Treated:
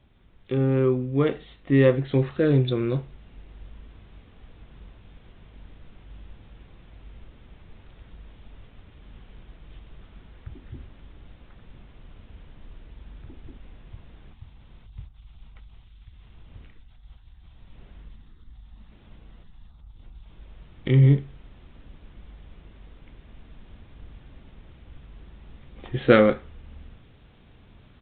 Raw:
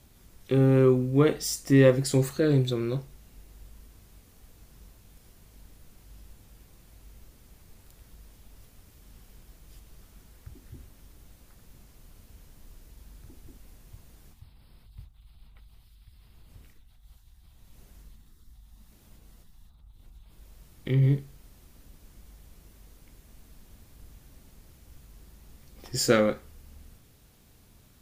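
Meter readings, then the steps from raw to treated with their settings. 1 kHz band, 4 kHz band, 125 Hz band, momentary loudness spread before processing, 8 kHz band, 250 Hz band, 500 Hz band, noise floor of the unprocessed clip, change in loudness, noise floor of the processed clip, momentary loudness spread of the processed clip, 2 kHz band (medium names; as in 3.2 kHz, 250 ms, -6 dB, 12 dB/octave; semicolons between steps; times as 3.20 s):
+4.0 dB, -3.0 dB, +3.0 dB, 12 LU, under -40 dB, +2.0 dB, +2.0 dB, -58 dBFS, +2.0 dB, -53 dBFS, 13 LU, +3.5 dB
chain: resampled via 8 kHz; gain riding within 5 dB 2 s; trim +1.5 dB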